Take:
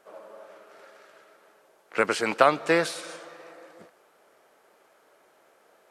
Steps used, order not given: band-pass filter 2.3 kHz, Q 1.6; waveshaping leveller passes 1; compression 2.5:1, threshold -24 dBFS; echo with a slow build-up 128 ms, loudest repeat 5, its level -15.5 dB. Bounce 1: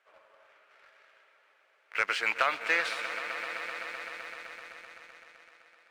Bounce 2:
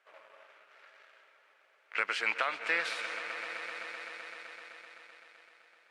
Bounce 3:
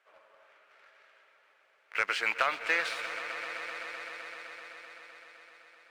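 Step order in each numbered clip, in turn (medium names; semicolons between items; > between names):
band-pass filter > compression > echo with a slow build-up > waveshaping leveller; compression > echo with a slow build-up > waveshaping leveller > band-pass filter; band-pass filter > waveshaping leveller > compression > echo with a slow build-up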